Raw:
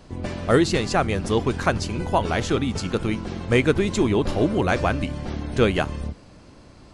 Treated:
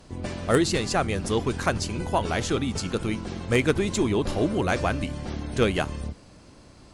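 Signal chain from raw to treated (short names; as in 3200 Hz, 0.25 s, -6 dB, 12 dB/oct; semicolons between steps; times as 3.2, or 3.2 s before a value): high shelf 6700 Hz +9 dB; added harmonics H 3 -13 dB, 5 -22 dB, 6 -39 dB, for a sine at -4 dBFS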